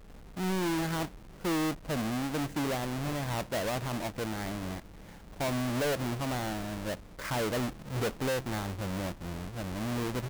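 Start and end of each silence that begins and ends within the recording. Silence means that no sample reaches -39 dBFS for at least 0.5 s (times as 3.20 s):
4.80–5.40 s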